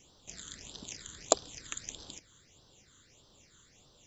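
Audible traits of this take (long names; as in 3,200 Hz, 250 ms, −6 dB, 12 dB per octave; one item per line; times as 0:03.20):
phaser sweep stages 8, 1.6 Hz, lowest notch 700–2,200 Hz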